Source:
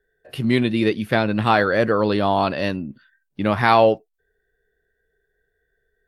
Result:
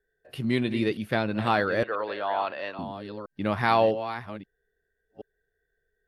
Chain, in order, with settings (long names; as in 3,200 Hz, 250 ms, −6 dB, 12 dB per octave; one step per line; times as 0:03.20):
delay that plays each chunk backwards 652 ms, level −11.5 dB
0:01.83–0:02.79: three-way crossover with the lows and the highs turned down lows −23 dB, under 450 Hz, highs −20 dB, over 3,700 Hz
level −7 dB